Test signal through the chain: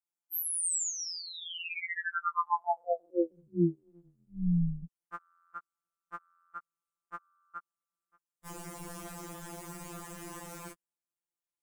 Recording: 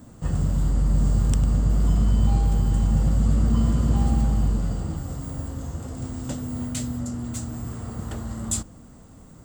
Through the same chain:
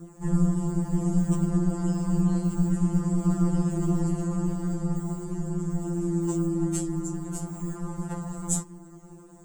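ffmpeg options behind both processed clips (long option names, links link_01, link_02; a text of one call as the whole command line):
ffmpeg -i in.wav -af "aeval=exprs='val(0)*sin(2*PI*86*n/s)':channel_layout=same,equalizer=frequency=250:width_type=o:width=1:gain=11,equalizer=frequency=1000:width_type=o:width=1:gain=7,equalizer=frequency=4000:width_type=o:width=1:gain=-8,equalizer=frequency=8000:width_type=o:width=1:gain=7,afftfilt=real='re*2.83*eq(mod(b,8),0)':imag='im*2.83*eq(mod(b,8),0)':win_size=2048:overlap=0.75" out.wav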